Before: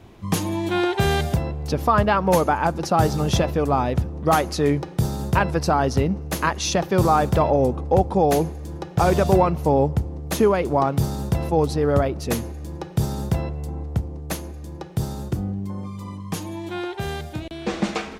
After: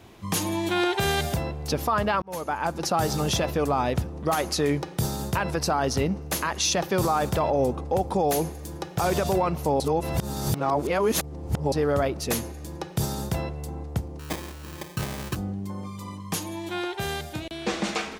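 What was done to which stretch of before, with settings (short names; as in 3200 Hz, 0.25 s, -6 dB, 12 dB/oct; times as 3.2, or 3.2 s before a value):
2.22–2.93 fade in
7.93–9.05 high shelf 9800 Hz +6.5 dB
9.8–11.72 reverse
14.19–15.36 sample-rate reducer 1400 Hz
whole clip: tilt +1.5 dB/oct; limiter -14.5 dBFS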